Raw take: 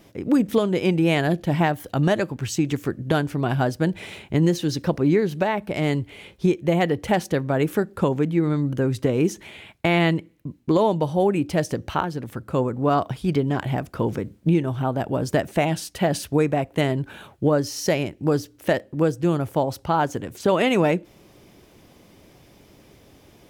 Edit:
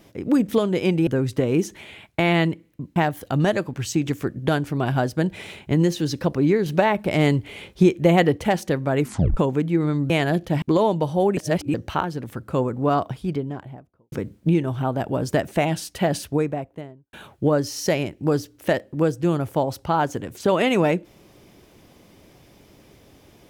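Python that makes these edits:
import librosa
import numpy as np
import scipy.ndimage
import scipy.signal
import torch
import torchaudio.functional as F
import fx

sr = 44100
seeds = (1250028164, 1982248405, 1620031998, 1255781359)

y = fx.studio_fade_out(x, sr, start_s=12.79, length_s=1.33)
y = fx.studio_fade_out(y, sr, start_s=16.07, length_s=1.06)
y = fx.edit(y, sr, fx.swap(start_s=1.07, length_s=0.52, other_s=8.73, other_length_s=1.89),
    fx.clip_gain(start_s=5.29, length_s=1.71, db=4.0),
    fx.tape_stop(start_s=7.63, length_s=0.37),
    fx.reverse_span(start_s=11.37, length_s=0.37), tone=tone)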